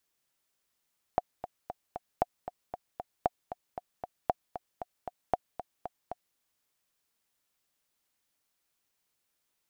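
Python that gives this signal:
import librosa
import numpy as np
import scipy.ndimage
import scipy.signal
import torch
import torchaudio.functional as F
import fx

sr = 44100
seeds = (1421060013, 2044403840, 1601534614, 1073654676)

y = fx.click_track(sr, bpm=231, beats=4, bars=5, hz=723.0, accent_db=12.0, level_db=-11.5)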